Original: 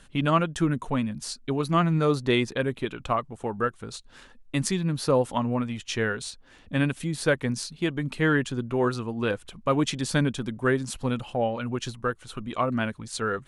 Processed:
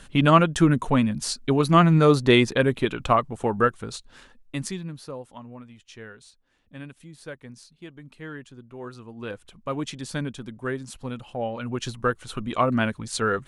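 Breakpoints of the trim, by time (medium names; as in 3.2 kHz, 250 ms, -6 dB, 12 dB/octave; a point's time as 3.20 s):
3.63 s +6 dB
4.77 s -6 dB
5.17 s -15.5 dB
8.70 s -15.5 dB
9.42 s -6 dB
11.20 s -6 dB
12.06 s +4 dB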